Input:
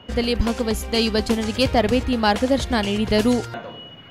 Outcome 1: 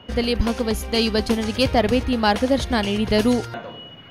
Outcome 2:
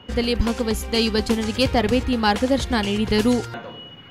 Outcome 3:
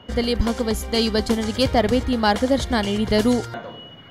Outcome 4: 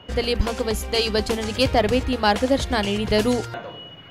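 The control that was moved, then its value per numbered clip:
band-stop, frequency: 7.5 kHz, 640 Hz, 2.6 kHz, 230 Hz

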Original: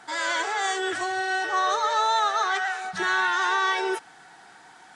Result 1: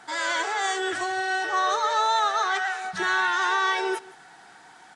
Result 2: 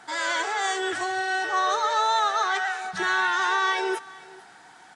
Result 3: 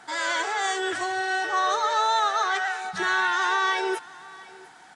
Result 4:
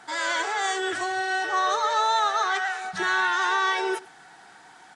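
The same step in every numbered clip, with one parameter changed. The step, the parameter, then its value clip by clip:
delay, time: 165 ms, 450 ms, 701 ms, 102 ms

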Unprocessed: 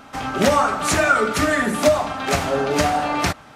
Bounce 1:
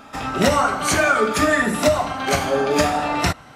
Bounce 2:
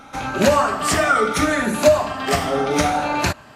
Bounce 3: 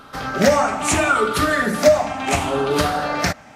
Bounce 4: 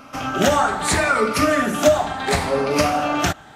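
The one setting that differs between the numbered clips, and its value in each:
drifting ripple filter, ripples per octave: 2, 1.4, 0.62, 0.92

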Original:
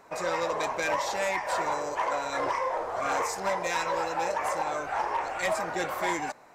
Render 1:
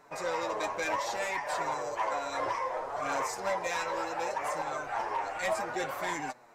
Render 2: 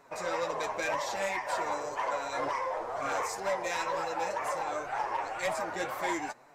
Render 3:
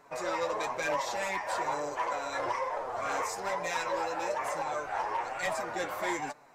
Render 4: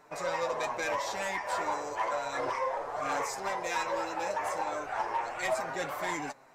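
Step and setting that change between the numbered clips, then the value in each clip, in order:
flange, rate: 0.66 Hz, 2 Hz, 1.1 Hz, 0.33 Hz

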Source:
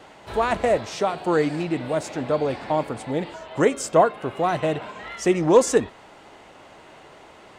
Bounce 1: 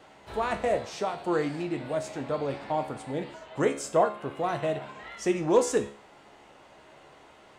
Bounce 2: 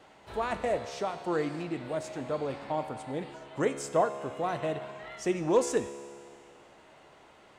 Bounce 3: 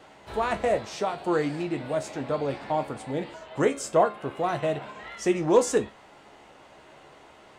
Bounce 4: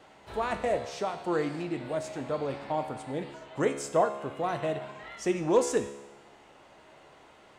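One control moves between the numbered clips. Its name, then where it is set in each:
feedback comb, decay: 0.45 s, 2.1 s, 0.21 s, 1 s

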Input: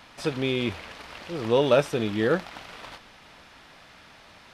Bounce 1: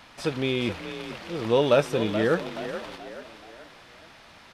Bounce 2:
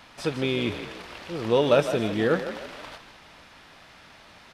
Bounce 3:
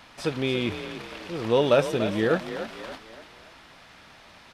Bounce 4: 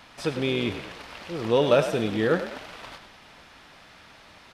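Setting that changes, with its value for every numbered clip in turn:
frequency-shifting echo, time: 428 ms, 157 ms, 289 ms, 101 ms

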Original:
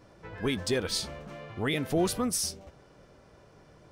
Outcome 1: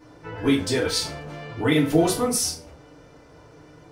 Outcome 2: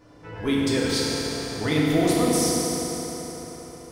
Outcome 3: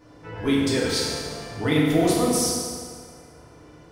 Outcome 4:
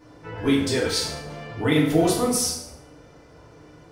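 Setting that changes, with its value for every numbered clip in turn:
FDN reverb, RT60: 0.38 s, 4.5 s, 2 s, 0.8 s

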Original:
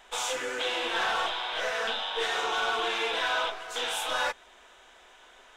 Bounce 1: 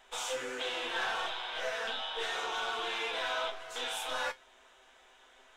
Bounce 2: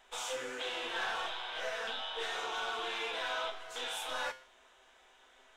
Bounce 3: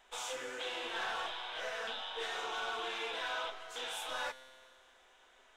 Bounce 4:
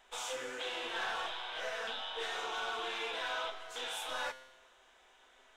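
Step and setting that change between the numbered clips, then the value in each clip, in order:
feedback comb, decay: 0.18 s, 0.48 s, 2.2 s, 1 s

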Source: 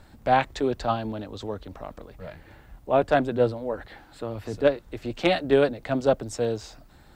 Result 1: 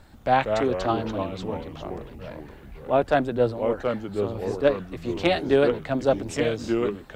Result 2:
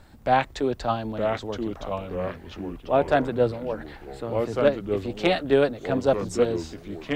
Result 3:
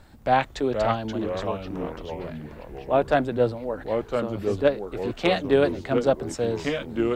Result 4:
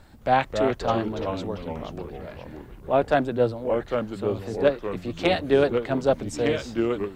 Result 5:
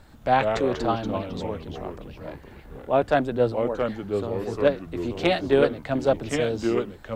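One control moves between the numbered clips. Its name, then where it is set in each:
ever faster or slower copies, time: 138 ms, 864 ms, 422 ms, 215 ms, 85 ms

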